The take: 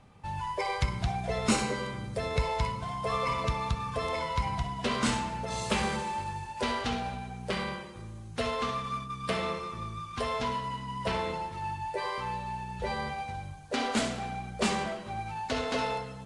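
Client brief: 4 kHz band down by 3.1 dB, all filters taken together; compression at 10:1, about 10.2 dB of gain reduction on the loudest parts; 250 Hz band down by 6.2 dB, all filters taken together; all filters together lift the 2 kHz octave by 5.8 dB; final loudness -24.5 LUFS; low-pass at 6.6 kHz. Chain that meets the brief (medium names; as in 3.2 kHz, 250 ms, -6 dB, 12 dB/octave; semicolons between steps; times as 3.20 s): low-pass 6.6 kHz; peaking EQ 250 Hz -8 dB; peaking EQ 2 kHz +9 dB; peaking EQ 4 kHz -7.5 dB; compression 10:1, threshold -34 dBFS; trim +13.5 dB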